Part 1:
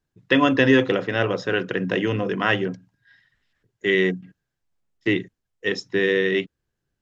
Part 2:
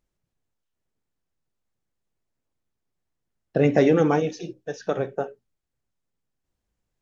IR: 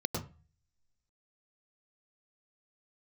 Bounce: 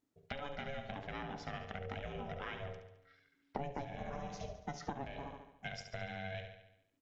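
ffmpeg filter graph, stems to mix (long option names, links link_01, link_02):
-filter_complex "[0:a]acompressor=threshold=-27dB:ratio=6,volume=-8.5dB,asplit=3[link_01][link_02][link_03];[link_02]volume=-9dB[link_04];[1:a]volume=-2.5dB,asplit=2[link_05][link_06];[link_06]volume=-15.5dB[link_07];[link_03]apad=whole_len=309536[link_08];[link_05][link_08]sidechaincompress=threshold=-52dB:ratio=3:attack=16:release=390[link_09];[link_04][link_07]amix=inputs=2:normalize=0,aecho=0:1:71|142|213|284|355|426|497|568:1|0.56|0.314|0.176|0.0983|0.0551|0.0308|0.0173[link_10];[link_01][link_09][link_10]amix=inputs=3:normalize=0,bandreject=frequency=50:width_type=h:width=6,bandreject=frequency=100:width_type=h:width=6,bandreject=frequency=150:width_type=h:width=6,bandreject=frequency=200:width_type=h:width=6,bandreject=frequency=250:width_type=h:width=6,bandreject=frequency=300:width_type=h:width=6,bandreject=frequency=350:width_type=h:width=6,bandreject=frequency=400:width_type=h:width=6,bandreject=frequency=450:width_type=h:width=6,aeval=exprs='val(0)*sin(2*PI*280*n/s)':channel_layout=same,acompressor=threshold=-37dB:ratio=16"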